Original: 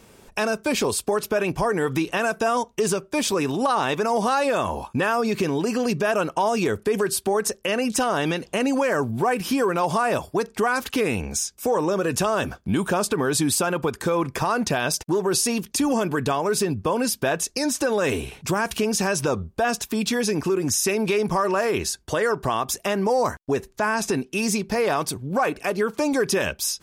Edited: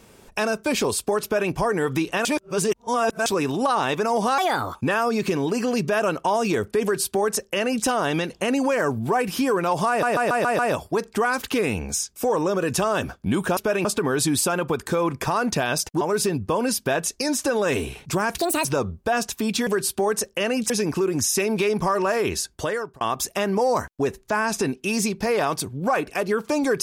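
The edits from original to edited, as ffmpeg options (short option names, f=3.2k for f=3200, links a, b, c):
-filter_complex "[0:a]asplit=18[a][b][c][d][e][f][g][h][i][j][k][l][m][n][o][p][q][r];[a]atrim=end=2.252[s];[b]atrim=start=2.248:end=3.262,asetpts=PTS-STARTPTS,areverse[t];[c]atrim=start=3.258:end=4.384[u];[d]atrim=start=4.38:end=4.87,asetpts=PTS-STARTPTS,asetrate=58653,aresample=44100,atrim=end_sample=16247,asetpts=PTS-STARTPTS[v];[e]atrim=start=4.866:end=10.152[w];[f]atrim=start=10.008:end=10.152[x];[g]atrim=start=10.008:end=10.152[y];[h]atrim=start=10.008:end=10.152[z];[i]atrim=start=10.008:end=10.152[aa];[j]atrim=start=10.008:end=12.992[ab];[k]atrim=start=1.228:end=1.512[ac];[l]atrim=start=12.988:end=15.152[ad];[m]atrim=start=16.368:end=18.744[ae];[n]atrim=start=18.74:end=19.17,asetpts=PTS-STARTPTS,asetrate=70119,aresample=44100,atrim=end_sample=11926,asetpts=PTS-STARTPTS[af];[o]atrim=start=19.166:end=20.192[ag];[p]atrim=start=6.948:end=7.982[ah];[q]atrim=start=20.188:end=22.5,asetpts=PTS-STARTPTS,afade=t=out:st=1.882:d=0.43[ai];[r]atrim=start=22.5,asetpts=PTS-STARTPTS,afade=t=in:d=0.004:c=hsin[aj];[s][t]acrossfade=d=0.004:c1=hsin:c2=hsin[ak];[ak][u]acrossfade=d=0.004:c1=hsin:c2=hsin[al];[al][v]acrossfade=d=0.004:c1=hsin:c2=hsin[am];[am][w]acrossfade=d=0.004:c1=hsin:c2=hsin[an];[an][x]acrossfade=d=0.004:c1=hsin:c2=hsin[ao];[ao][y]acrossfade=d=0.004:c1=hsin:c2=hsin[ap];[ap][z]acrossfade=d=0.004:c1=hsin:c2=hsin[aq];[aq][aa]acrossfade=d=0.004:c1=hsin:c2=hsin[ar];[ar][ab]acrossfade=d=0.004:c1=hsin:c2=hsin[as];[as][ac]acrossfade=d=0.004:c1=hsin:c2=hsin[at];[at][ad]acrossfade=d=0.004:c1=hsin:c2=hsin[au];[au][ae]acrossfade=d=0.004:c1=hsin:c2=hsin[av];[av][af]acrossfade=d=0.004:c1=hsin:c2=hsin[aw];[aw][ag]acrossfade=d=0.004:c1=hsin:c2=hsin[ax];[ax][ah]acrossfade=d=0.004:c1=hsin:c2=hsin[ay];[ai][aj]concat=n=2:v=0:a=1[az];[ay][az]acrossfade=d=0.004:c1=hsin:c2=hsin"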